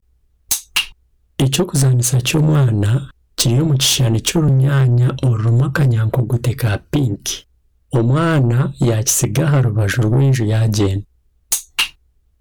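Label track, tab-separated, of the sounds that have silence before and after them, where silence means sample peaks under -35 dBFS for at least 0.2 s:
0.510000	0.920000	sound
1.390000	3.100000	sound
3.380000	7.410000	sound
7.920000	11.040000	sound
11.520000	11.900000	sound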